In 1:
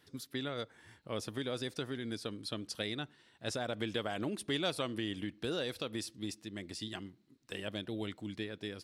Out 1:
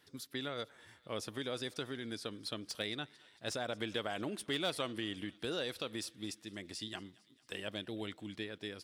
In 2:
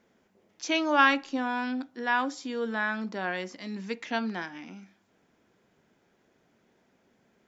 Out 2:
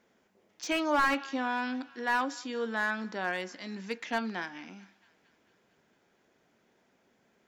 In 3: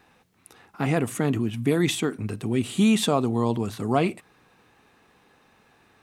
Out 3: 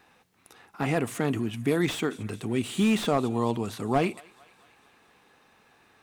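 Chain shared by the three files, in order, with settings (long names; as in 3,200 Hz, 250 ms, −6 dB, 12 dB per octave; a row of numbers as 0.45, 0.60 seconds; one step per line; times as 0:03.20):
low-shelf EQ 330 Hz −5.5 dB
on a send: feedback echo with a high-pass in the loop 224 ms, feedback 68%, high-pass 760 Hz, level −23.5 dB
on the sum: slew-rate limiting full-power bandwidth 100 Hz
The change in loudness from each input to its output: −1.5, −3.0, −3.0 LU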